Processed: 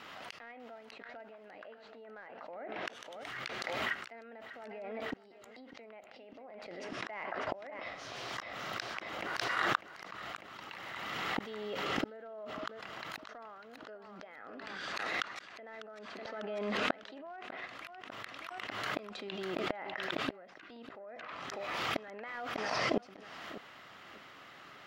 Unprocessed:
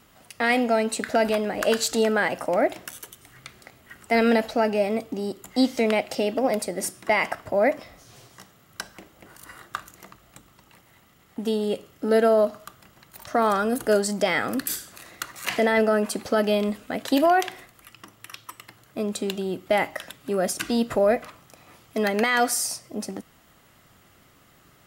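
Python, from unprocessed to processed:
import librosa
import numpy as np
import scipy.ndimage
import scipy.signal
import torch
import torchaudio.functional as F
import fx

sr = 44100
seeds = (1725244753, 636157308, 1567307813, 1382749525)

p1 = fx.tracing_dist(x, sr, depth_ms=0.024)
p2 = fx.highpass(p1, sr, hz=1100.0, slope=6)
p3 = fx.env_lowpass_down(p2, sr, base_hz=1800.0, full_db=-25.5)
p4 = fx.high_shelf(p3, sr, hz=8800.0, db=7.5)
p5 = fx.gate_flip(p4, sr, shuts_db=-31.0, range_db=-33)
p6 = np.where(np.abs(p5) >= 10.0 ** (-50.0 / 20.0), p5, 0.0)
p7 = p5 + (p6 * librosa.db_to_amplitude(-10.5))
p8 = fx.air_absorb(p7, sr, metres=250.0)
p9 = p8 + fx.echo_feedback(p8, sr, ms=598, feedback_pct=32, wet_db=-15.0, dry=0)
p10 = fx.pre_swell(p9, sr, db_per_s=21.0)
y = p10 * librosa.db_to_amplitude(10.0)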